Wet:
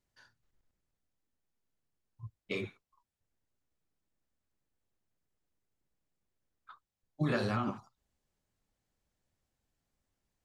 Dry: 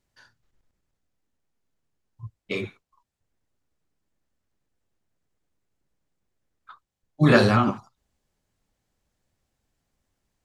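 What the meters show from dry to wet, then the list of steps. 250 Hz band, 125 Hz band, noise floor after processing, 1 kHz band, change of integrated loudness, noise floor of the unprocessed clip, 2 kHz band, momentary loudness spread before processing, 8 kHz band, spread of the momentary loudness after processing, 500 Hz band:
-13.5 dB, -13.5 dB, under -85 dBFS, -13.5 dB, -14.0 dB, -82 dBFS, -14.5 dB, 19 LU, -14.0 dB, 20 LU, -14.0 dB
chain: compression 4:1, threshold -22 dBFS, peak gain reduction 10 dB; trim -7 dB

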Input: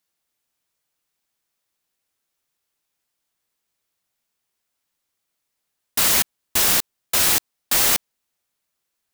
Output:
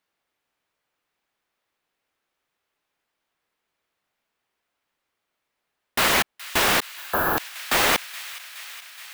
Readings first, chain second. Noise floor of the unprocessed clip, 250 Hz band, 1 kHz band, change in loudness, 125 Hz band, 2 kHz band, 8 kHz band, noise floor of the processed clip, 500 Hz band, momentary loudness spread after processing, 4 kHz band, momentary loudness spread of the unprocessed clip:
-79 dBFS, +3.5 dB, +6.0 dB, -4.0 dB, +0.5 dB, +4.0 dB, -8.5 dB, -81 dBFS, +5.5 dB, 17 LU, -1.5 dB, 6 LU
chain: on a send: feedback echo behind a high-pass 421 ms, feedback 74%, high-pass 1.7 kHz, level -15.5 dB; on the sum: spectral replace 6.91–7.36 s, 1.8–11 kHz before; tone controls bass -6 dB, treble -15 dB; trim +6 dB

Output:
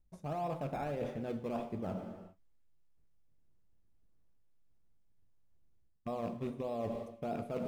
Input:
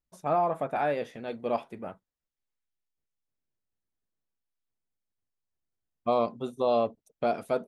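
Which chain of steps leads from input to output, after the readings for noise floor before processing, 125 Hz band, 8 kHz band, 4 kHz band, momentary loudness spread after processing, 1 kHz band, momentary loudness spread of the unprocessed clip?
under -85 dBFS, +1.0 dB, no reading, -11.5 dB, 7 LU, -12.0 dB, 10 LU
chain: rattle on loud lows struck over -41 dBFS, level -31 dBFS; bass shelf 210 Hz +6.5 dB; in parallel at -9 dB: decimation with a swept rate 20×, swing 100% 1.6 Hz; on the sum: peak limiter -20 dBFS, peak gain reduction 9 dB; tilt EQ -2 dB/octave; gated-style reverb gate 440 ms falling, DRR 9 dB; reverse; compression 5:1, threshold -39 dBFS, peak gain reduction 16 dB; reverse; trim +2.5 dB

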